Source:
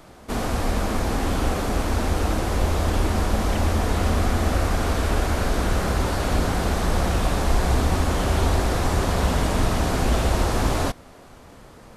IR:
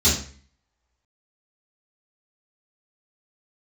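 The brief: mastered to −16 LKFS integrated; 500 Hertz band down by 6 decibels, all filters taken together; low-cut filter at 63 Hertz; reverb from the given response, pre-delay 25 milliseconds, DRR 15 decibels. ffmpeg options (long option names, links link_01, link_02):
-filter_complex "[0:a]highpass=63,equalizer=frequency=500:width_type=o:gain=-8,asplit=2[link_01][link_02];[1:a]atrim=start_sample=2205,adelay=25[link_03];[link_02][link_03]afir=irnorm=-1:irlink=0,volume=-31dB[link_04];[link_01][link_04]amix=inputs=2:normalize=0,volume=7dB"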